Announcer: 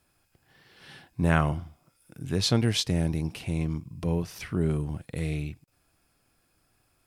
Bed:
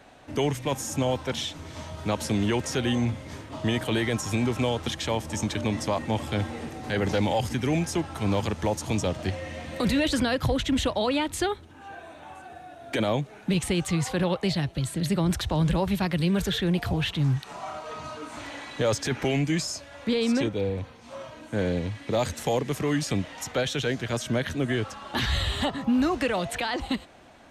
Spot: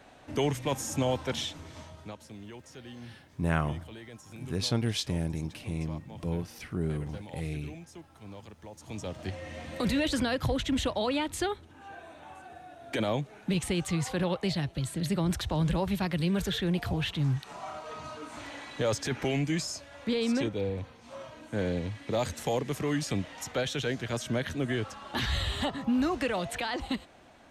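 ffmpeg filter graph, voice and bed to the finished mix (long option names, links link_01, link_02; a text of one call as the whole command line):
ffmpeg -i stem1.wav -i stem2.wav -filter_complex "[0:a]adelay=2200,volume=-5dB[link_01];[1:a]volume=14dB,afade=type=out:start_time=1.4:duration=0.79:silence=0.125893,afade=type=in:start_time=8.72:duration=0.9:silence=0.149624[link_02];[link_01][link_02]amix=inputs=2:normalize=0" out.wav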